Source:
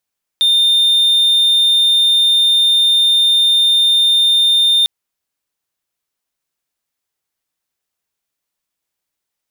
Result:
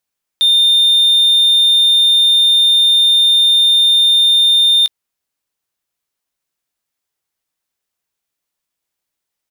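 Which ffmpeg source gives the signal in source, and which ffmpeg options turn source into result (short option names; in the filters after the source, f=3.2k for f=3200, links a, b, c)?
-f lavfi -i "aevalsrc='0.447*(1-4*abs(mod(3620*t+0.25,1)-0.5))':d=4.45:s=44100"
-filter_complex "[0:a]asplit=2[a][b];[b]adelay=18,volume=-14dB[c];[a][c]amix=inputs=2:normalize=0"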